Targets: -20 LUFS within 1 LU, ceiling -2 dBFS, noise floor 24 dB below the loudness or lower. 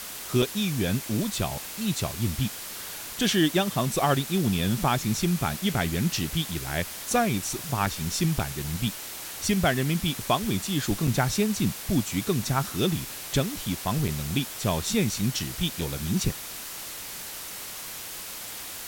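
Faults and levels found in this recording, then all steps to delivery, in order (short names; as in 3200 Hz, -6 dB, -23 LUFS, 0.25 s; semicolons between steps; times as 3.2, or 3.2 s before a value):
dropouts 7; longest dropout 4.4 ms; noise floor -38 dBFS; noise floor target -52 dBFS; loudness -27.5 LUFS; peak -11.0 dBFS; loudness target -20.0 LUFS
-> interpolate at 0.42/4.84/7.86/8.39/11.07/14.08/15.81, 4.4 ms; noise print and reduce 14 dB; gain +7.5 dB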